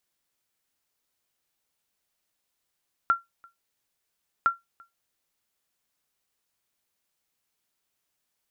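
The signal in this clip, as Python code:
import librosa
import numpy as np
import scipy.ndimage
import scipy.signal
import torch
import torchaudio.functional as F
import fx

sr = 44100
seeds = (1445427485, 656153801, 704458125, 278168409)

y = fx.sonar_ping(sr, hz=1370.0, decay_s=0.17, every_s=1.36, pings=2, echo_s=0.34, echo_db=-29.5, level_db=-13.0)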